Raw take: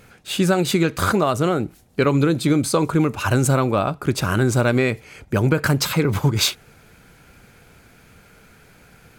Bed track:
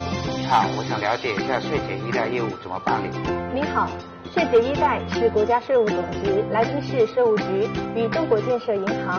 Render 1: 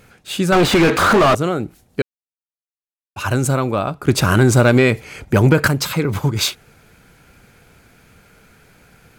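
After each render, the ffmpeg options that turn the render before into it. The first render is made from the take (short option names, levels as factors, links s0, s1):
-filter_complex "[0:a]asettb=1/sr,asplit=3[s0][s1][s2];[s0]atrim=end=0.524[s3];[s1]atrim=start=0.52:end=1.35,asetpts=PTS-STARTPTS,afade=t=in:d=0.004:c=qsin,afade=t=out:st=0.826:d=0.004:c=qsin,asplit=2[s4][s5];[s5]highpass=f=720:p=1,volume=63.1,asoftclip=type=tanh:threshold=0.562[s6];[s4][s6]amix=inputs=2:normalize=0,lowpass=f=1700:p=1,volume=0.501[s7];[s2]atrim=start=1.346[s8];[s3][s7]acrossfade=d=0.004:c1=hsin:c2=qsin[s9];[s9][s8]acrossfade=d=0.004:c1=qsin:c2=hsin,asettb=1/sr,asplit=3[s10][s11][s12];[s10]atrim=end=4.084[s13];[s11]atrim=start=4.08:end=5.68,asetpts=PTS-STARTPTS,afade=t=in:d=0.004:c=qsin,afade=t=out:st=1.596:d=0.004:c=qsin,acontrast=76[s14];[s12]atrim=start=5.676[s15];[s13][s14]acrossfade=d=0.004:c1=hsin:c2=qsin[s16];[s16][s15]acrossfade=d=0.004:c1=qsin:c2=hsin,asplit=3[s17][s18][s19];[s17]atrim=end=2.02,asetpts=PTS-STARTPTS,afade=t=out:st=2.016:d=0.004:c=hsin[s20];[s18]atrim=start=2.02:end=3.16,asetpts=PTS-STARTPTS,volume=0[s21];[s19]atrim=start=3.16,asetpts=PTS-STARTPTS,afade=t=in:d=0.004:c=hsin[s22];[s20][s21][s22]concat=n=3:v=0:a=1"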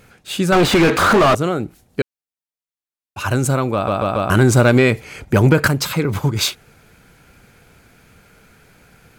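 -filter_complex "[0:a]asplit=5[s0][s1][s2][s3][s4];[s0]atrim=end=3.882[s5];[s1]atrim=start=3.738:end=3.882[s6];[s2]atrim=start=3.738:end=3.882[s7];[s3]atrim=start=3.738:end=3.882[s8];[s4]atrim=start=4.298[s9];[s5][s6]acrossfade=d=0.004:c1=hsin:c2=hsin[s10];[s10][s7]acrossfade=d=0.004:c1=hsin:c2=hsin[s11];[s11][s8]acrossfade=d=0.004:c1=hsin:c2=hsin[s12];[s12][s9]acrossfade=d=0.004:c1=hsin:c2=hsin"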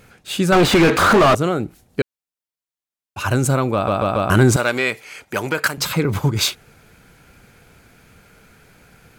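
-filter_complex "[0:a]asettb=1/sr,asplit=3[s0][s1][s2];[s0]atrim=end=4.564[s3];[s1]atrim=start=4.56:end=5.78,asetpts=PTS-STARTPTS,afade=t=in:d=0.004:c=qsin,afade=t=out:st=1.216:d=0.004:c=qsin,highpass=f=1100:p=1[s4];[s2]atrim=start=5.776[s5];[s3][s4]acrossfade=d=0.004:c1=hsin:c2=qsin[s6];[s6][s5]acrossfade=d=0.004:c1=qsin:c2=hsin"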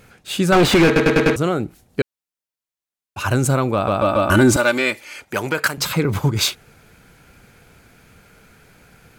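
-filter_complex "[0:a]asettb=1/sr,asplit=3[s0][s1][s2];[s0]atrim=end=4.014[s3];[s1]atrim=start=4.01:end=5.21,asetpts=PTS-STARTPTS,afade=t=in:d=0.004:c=qsin,afade=t=out:st=1.196:d=0.004:c=qsin,aecho=1:1:3.4:0.65,atrim=end_sample=52920[s4];[s2]atrim=start=5.206[s5];[s3][s4]acrossfade=d=0.004:c1=hsin:c2=qsin[s6];[s6][s5]acrossfade=d=0.004:c1=qsin:c2=hsin,asplit=6[s7][s8][s9][s10][s11][s12];[s7]atrim=end=0.962[s13];[s8]atrim=start=0.858:end=0.962[s14];[s9]atrim=start=0.858:end=0.962[s15];[s10]atrim=start=0.858:end=0.962[s16];[s11]atrim=start=0.858:end=0.962[s17];[s12]atrim=start=1.358[s18];[s13][s14]acrossfade=d=0.004:c1=hsin:c2=hsin[s19];[s19][s15]acrossfade=d=0.004:c1=hsin:c2=hsin[s20];[s20][s16]acrossfade=d=0.004:c1=hsin:c2=hsin[s21];[s21][s17]acrossfade=d=0.004:c1=hsin:c2=hsin[s22];[s22][s18]acrossfade=d=0.004:c1=hsin:c2=hsin"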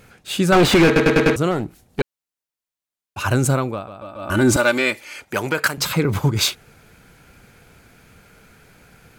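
-filter_complex "[0:a]asettb=1/sr,asplit=3[s0][s1][s2];[s0]atrim=end=1.514[s3];[s1]atrim=start=1.51:end=2.01,asetpts=PTS-STARTPTS,afade=t=in:d=0.004:c=qsin,afade=t=out:st=0.496:d=0.004:c=qsin,aeval=exprs='clip(val(0),-1,0.0891)':c=same[s4];[s2]atrim=start=2.006[s5];[s3][s4]acrossfade=d=0.004:c1=hsin:c2=qsin[s6];[s6][s5]acrossfade=d=0.004:c1=qsin:c2=hsin,asplit=3[s7][s8][s9];[s7]atrim=end=3.88,asetpts=PTS-STARTPTS,afade=t=out:st=3.5:d=0.38:silence=0.125893[s10];[s8]atrim=start=3.88:end=4.18,asetpts=PTS-STARTPTS,volume=0.126[s11];[s9]atrim=start=4.18,asetpts=PTS-STARTPTS,afade=t=in:d=0.38:silence=0.125893[s12];[s10][s11][s12]concat=n=3:v=0:a=1"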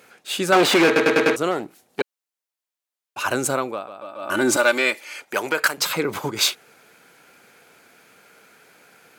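-af "highpass=350"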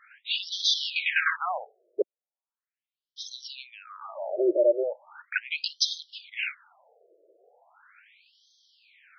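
-filter_complex "[0:a]acrossover=split=560|7200[s0][s1][s2];[s2]asoftclip=type=hard:threshold=0.0562[s3];[s0][s1][s3]amix=inputs=3:normalize=0,afftfilt=real='re*between(b*sr/1024,460*pow(4500/460,0.5+0.5*sin(2*PI*0.38*pts/sr))/1.41,460*pow(4500/460,0.5+0.5*sin(2*PI*0.38*pts/sr))*1.41)':imag='im*between(b*sr/1024,460*pow(4500/460,0.5+0.5*sin(2*PI*0.38*pts/sr))/1.41,460*pow(4500/460,0.5+0.5*sin(2*PI*0.38*pts/sr))*1.41)':win_size=1024:overlap=0.75"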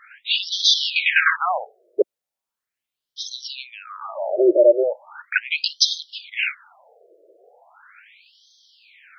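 -af "volume=2.51"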